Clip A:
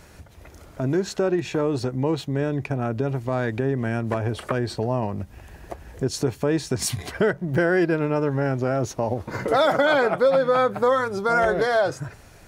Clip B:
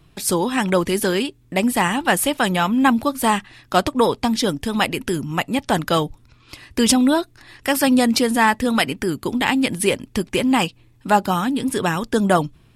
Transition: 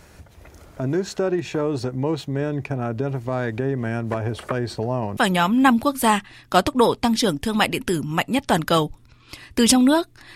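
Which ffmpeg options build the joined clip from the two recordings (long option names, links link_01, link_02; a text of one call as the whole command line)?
ffmpeg -i cue0.wav -i cue1.wav -filter_complex "[0:a]apad=whole_dur=10.35,atrim=end=10.35,atrim=end=5.172[link_01];[1:a]atrim=start=2.368:end=7.55[link_02];[link_01][link_02]acrossfade=duration=0.004:curve1=hsin:curve2=hsin" out.wav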